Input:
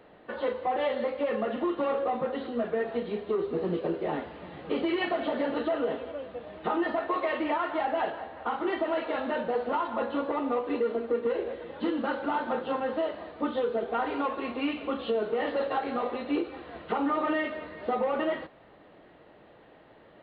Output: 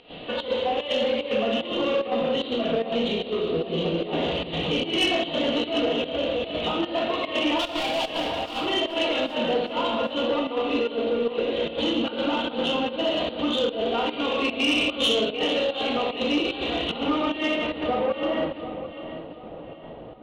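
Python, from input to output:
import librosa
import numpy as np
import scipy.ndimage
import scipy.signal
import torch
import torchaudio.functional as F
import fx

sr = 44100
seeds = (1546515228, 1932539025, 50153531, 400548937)

p1 = fx.over_compress(x, sr, threshold_db=-40.0, ratio=-1.0)
p2 = x + (p1 * librosa.db_to_amplitude(-1.0))
p3 = fx.filter_sweep_lowpass(p2, sr, from_hz=3500.0, to_hz=1000.0, start_s=17.01, end_s=18.85, q=0.92)
p4 = fx.overload_stage(p3, sr, gain_db=27.0, at=(7.57, 8.57), fade=0.02)
p5 = fx.high_shelf_res(p4, sr, hz=2300.0, db=9.0, q=3.0)
p6 = fx.room_shoebox(p5, sr, seeds[0], volume_m3=620.0, walls='mixed', distance_m=1.8)
p7 = fx.volume_shaper(p6, sr, bpm=149, per_beat=1, depth_db=-14, release_ms=100.0, shape='slow start')
p8 = p7 + fx.echo_feedback(p7, sr, ms=742, feedback_pct=36, wet_db=-13.0, dry=0)
y = 10.0 ** (-15.5 / 20.0) * np.tanh(p8 / 10.0 ** (-15.5 / 20.0))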